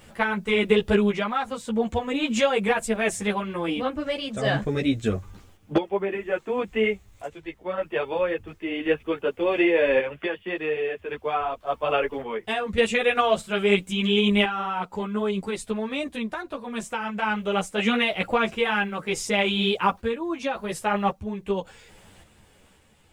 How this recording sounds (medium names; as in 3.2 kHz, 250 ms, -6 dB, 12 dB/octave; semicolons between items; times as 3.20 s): a quantiser's noise floor 12-bit, dither triangular; random-step tremolo 1.8 Hz, depth 70%; a shimmering, thickened sound